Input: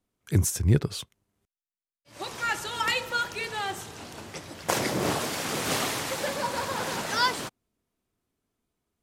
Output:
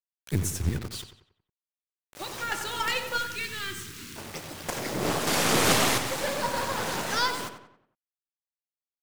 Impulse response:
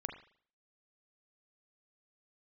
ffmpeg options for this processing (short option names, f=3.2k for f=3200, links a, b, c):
-filter_complex "[0:a]asettb=1/sr,asplit=3[a][b][c];[a]atrim=end=0.694[d];[b]atrim=start=0.69:end=2.52,asetpts=PTS-STARTPTS,afade=t=in:d=0.004:c=qsin,afade=t=out:st=1.826:d=0.004:c=qsin,acrossover=split=270|810[e][f][g];[e]acompressor=threshold=-28dB:ratio=4[h];[f]acompressor=threshold=-41dB:ratio=4[i];[g]acompressor=threshold=-33dB:ratio=4[j];[h][i][j]amix=inputs=3:normalize=0[k];[c]atrim=start=2.516[l];[d][k]acrossfade=d=0.004:c1=hsin:c2=qsin[m];[m][l]acrossfade=d=0.004:c1=qsin:c2=hsin,alimiter=limit=-16.5dB:level=0:latency=1:release=474,asettb=1/sr,asplit=3[n][o][p];[n]atrim=end=5.274[q];[o]atrim=start=5.27:end=5.98,asetpts=PTS-STARTPTS,afade=t=in:d=0.004:c=qsin,afade=t=out:st=0.706:d=0.004:c=qsin,acontrast=75[r];[p]atrim=start=5.976[s];[q][r]acrossfade=d=0.004:c1=hsin:c2=qsin[t];[t][s]acrossfade=d=0.004:c1=qsin:c2=hsin,acrusher=bits=6:mix=0:aa=0.000001,aeval=exprs='0.282*(cos(1*acos(clip(val(0)/0.282,-1,1)))-cos(1*PI/2))+0.0224*(cos(6*acos(clip(val(0)/0.282,-1,1)))-cos(6*PI/2))':c=same,asettb=1/sr,asplit=3[u][v][w];[u]atrim=end=3.184[x];[v]atrim=start=3.18:end=4.16,asetpts=PTS-STARTPTS,afade=t=in:d=0.004:c=qsin,afade=t=out:st=0.976:d=0.004:c=qsin,asuperstop=centerf=680:order=4:qfactor=0.66[y];[w]atrim=start=4.156[z];[x][y]acrossfade=d=0.004:c1=hsin:c2=qsin[aa];[aa][z]acrossfade=d=0.004:c1=qsin:c2=hsin,asplit=2[ab][ac];[ac]adelay=92,lowpass=f=3.3k:p=1,volume=-8.5dB,asplit=2[ad][ae];[ae]adelay=92,lowpass=f=3.3k:p=1,volume=0.45,asplit=2[af][ag];[ag]adelay=92,lowpass=f=3.3k:p=1,volume=0.45,asplit=2[ah][ai];[ai]adelay=92,lowpass=f=3.3k:p=1,volume=0.45,asplit=2[aj][ak];[ak]adelay=92,lowpass=f=3.3k:p=1,volume=0.45[al];[ab][ad][af][ah][aj][al]amix=inputs=6:normalize=0"